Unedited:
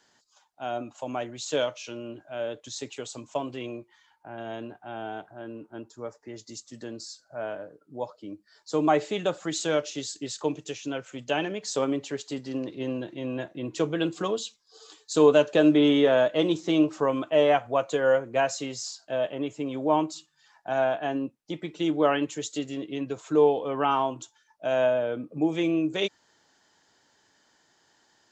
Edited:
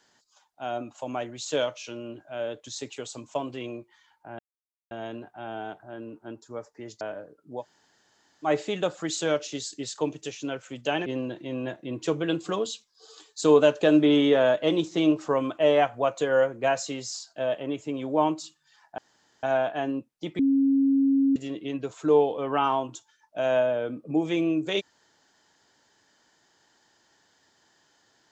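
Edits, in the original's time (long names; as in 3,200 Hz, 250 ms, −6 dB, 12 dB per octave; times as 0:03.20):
0:04.39: splice in silence 0.52 s
0:06.49–0:07.44: remove
0:08.04–0:08.90: fill with room tone, crossfade 0.10 s
0:11.49–0:12.78: remove
0:20.70: splice in room tone 0.45 s
0:21.66–0:22.63: beep over 273 Hz −18 dBFS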